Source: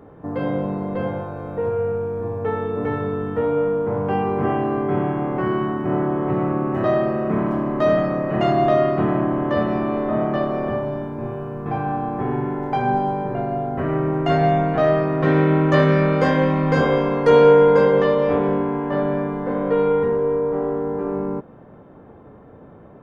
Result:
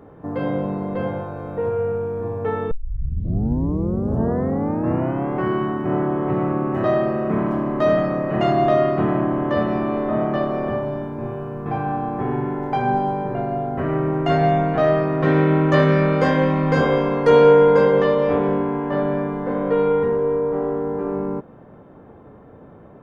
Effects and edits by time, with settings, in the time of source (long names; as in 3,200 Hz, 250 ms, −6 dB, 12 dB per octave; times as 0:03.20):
0:02.71: tape start 2.64 s